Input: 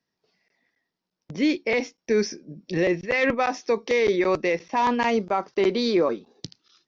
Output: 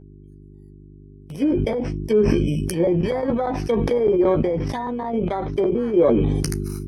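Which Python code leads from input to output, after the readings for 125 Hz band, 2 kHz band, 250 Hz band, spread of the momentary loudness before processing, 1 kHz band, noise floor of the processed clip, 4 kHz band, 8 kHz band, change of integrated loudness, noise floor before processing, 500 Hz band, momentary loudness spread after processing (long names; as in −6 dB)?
+14.0 dB, −10.5 dB, +5.0 dB, 12 LU, −3.0 dB, −44 dBFS, −5.5 dB, can't be measured, +2.5 dB, −84 dBFS, +3.5 dB, 7 LU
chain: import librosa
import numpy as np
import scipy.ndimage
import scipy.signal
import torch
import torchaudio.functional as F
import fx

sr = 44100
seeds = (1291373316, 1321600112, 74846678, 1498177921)

p1 = fx.bit_reversed(x, sr, seeds[0], block=16)
p2 = fx.env_lowpass_down(p1, sr, base_hz=900.0, full_db=-19.0)
p3 = fx.noise_reduce_blind(p2, sr, reduce_db=27)
p4 = fx.level_steps(p3, sr, step_db=22)
p5 = p3 + (p4 * 10.0 ** (0.5 / 20.0))
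p6 = fx.dmg_buzz(p5, sr, base_hz=50.0, harmonics=8, level_db=-42.0, tilt_db=-4, odd_only=False)
p7 = fx.chorus_voices(p6, sr, voices=4, hz=0.62, base_ms=13, depth_ms=1.3, mix_pct=30)
y = fx.sustainer(p7, sr, db_per_s=21.0)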